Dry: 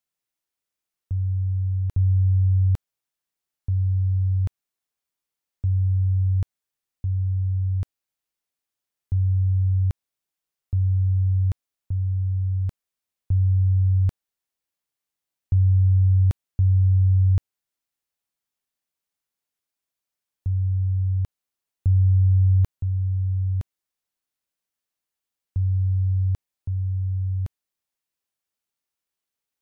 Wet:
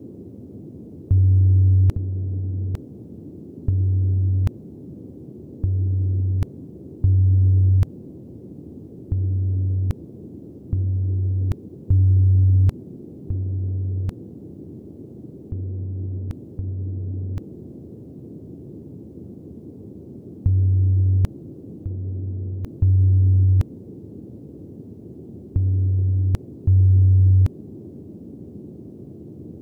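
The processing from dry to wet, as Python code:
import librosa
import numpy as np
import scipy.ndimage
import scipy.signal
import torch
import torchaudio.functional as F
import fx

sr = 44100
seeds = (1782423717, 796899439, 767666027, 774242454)

y = fx.over_compress(x, sr, threshold_db=-24.0, ratio=-0.5)
y = fx.dmg_noise_band(y, sr, seeds[0], low_hz=77.0, high_hz=370.0, level_db=-45.0)
y = F.gain(torch.from_numpy(y), 6.5).numpy()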